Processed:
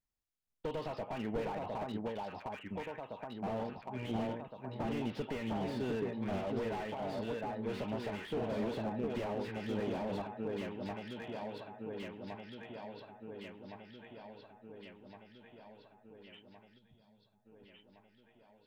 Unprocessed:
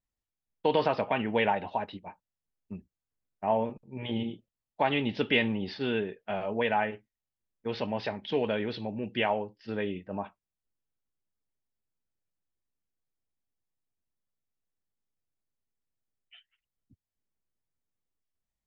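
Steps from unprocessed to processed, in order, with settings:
downward compressor 6 to 1, threshold −29 dBFS, peak gain reduction 9 dB
delay that swaps between a low-pass and a high-pass 707 ms, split 1,300 Hz, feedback 77%, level −2.5 dB
gain on a spectral selection 0:16.78–0:17.45, 220–3,200 Hz −11 dB
slew-rate limiting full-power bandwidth 16 Hz
level −3 dB

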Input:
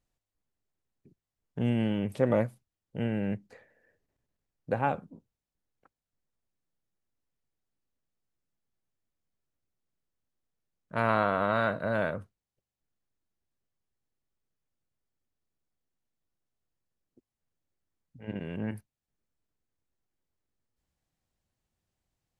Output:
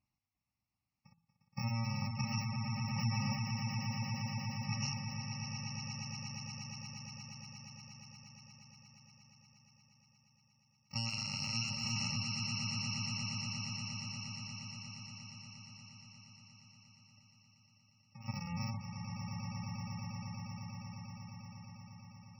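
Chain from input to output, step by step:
samples in bit-reversed order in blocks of 128 samples
high-pass filter 98 Hz 12 dB per octave
hum removal 164.8 Hz, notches 27
downward compressor 4 to 1, threshold −32 dBFS, peak gain reduction 10.5 dB
high-frequency loss of the air 110 metres
phaser with its sweep stopped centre 2,300 Hz, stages 8
echo that builds up and dies away 118 ms, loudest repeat 8, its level −8.5 dB
gate on every frequency bin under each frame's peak −25 dB strong
level +5.5 dB

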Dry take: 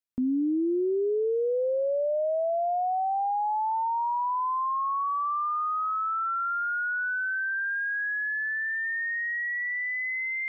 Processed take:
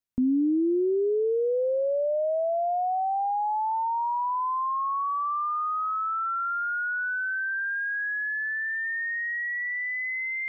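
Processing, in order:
low-shelf EQ 200 Hz +8 dB

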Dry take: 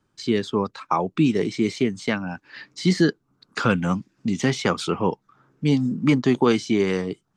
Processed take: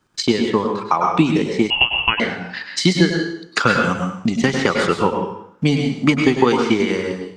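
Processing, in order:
transient designer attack +9 dB, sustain −6 dB
low-shelf EQ 480 Hz −7.5 dB
on a send at −3 dB: convolution reverb RT60 0.60 s, pre-delay 93 ms
0:01.70–0:02.20: on the sum: voice inversion scrambler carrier 3,100 Hz
in parallel at +1.5 dB: downward compressor, threshold −30 dBFS, peak gain reduction 18.5 dB
on the sum: boost into a limiter +2.5 dB
level −1 dB

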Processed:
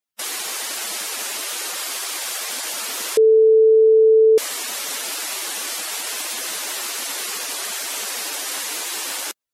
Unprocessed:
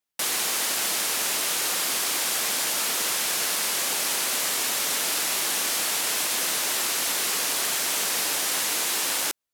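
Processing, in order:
gate on every frequency bin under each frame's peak −10 dB strong
0:01.76–0:02.52: high-pass filter 330 Hz
0:03.17–0:04.38: beep over 441 Hz −9 dBFS

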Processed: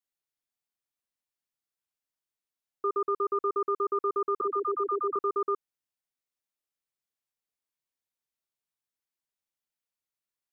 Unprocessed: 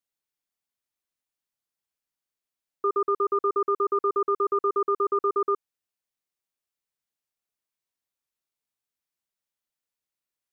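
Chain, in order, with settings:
0:04.41–0:05.16: all-pass dispersion lows, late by 67 ms, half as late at 450 Hz
level −4 dB

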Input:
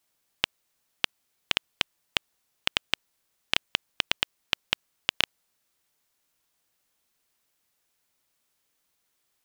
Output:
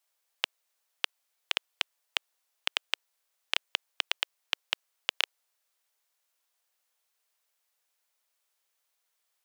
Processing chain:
high-pass filter 480 Hz 24 dB per octave
level −3.5 dB

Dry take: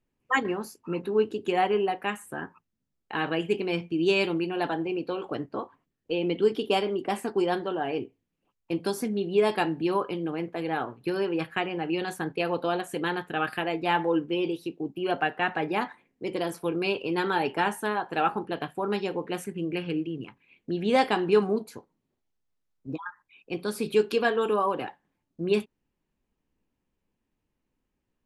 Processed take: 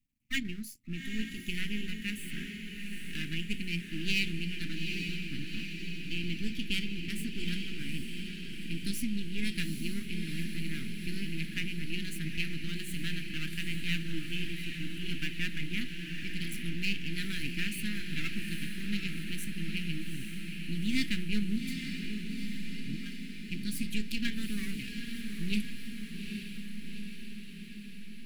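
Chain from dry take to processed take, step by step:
gain on one half-wave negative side −12 dB
elliptic band-stop filter 250–2,100 Hz, stop band 60 dB
high-shelf EQ 11,000 Hz +8 dB
on a send: feedback delay with all-pass diffusion 825 ms, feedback 68%, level −5.5 dB

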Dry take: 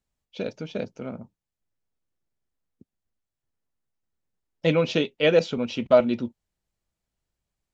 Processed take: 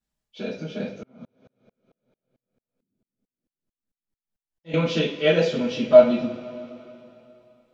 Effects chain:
coupled-rooms reverb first 0.39 s, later 3.1 s, from −19 dB, DRR −9 dB
0:01.03–0:04.74: tremolo with a ramp in dB swelling 4.5 Hz, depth 37 dB
level −9 dB

